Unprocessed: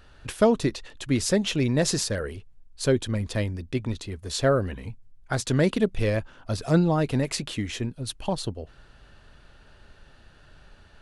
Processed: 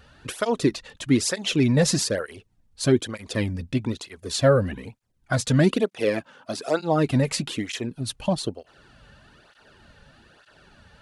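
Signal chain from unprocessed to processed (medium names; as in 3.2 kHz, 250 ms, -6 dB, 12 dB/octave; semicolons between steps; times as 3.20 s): 5.81–6.79 s: high-pass 170 Hz -> 360 Hz 12 dB/octave; cancelling through-zero flanger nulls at 1.1 Hz, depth 3.2 ms; trim +5.5 dB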